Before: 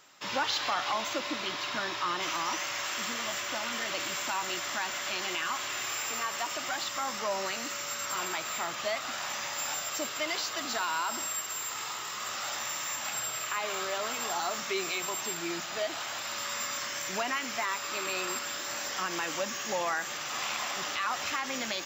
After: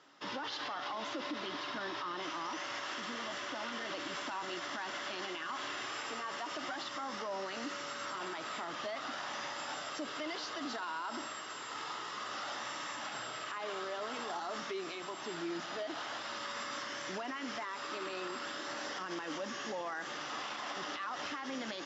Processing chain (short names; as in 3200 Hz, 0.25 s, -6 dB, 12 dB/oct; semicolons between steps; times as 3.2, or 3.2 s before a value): 14.63–15.29 compressor, threshold -33 dBFS, peak gain reduction 6 dB; speaker cabinet 120–5000 Hz, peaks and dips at 290 Hz +8 dB, 440 Hz +3 dB, 2400 Hz -8 dB, 4100 Hz -5 dB; limiter -29 dBFS, peak gain reduction 11.5 dB; gain -2 dB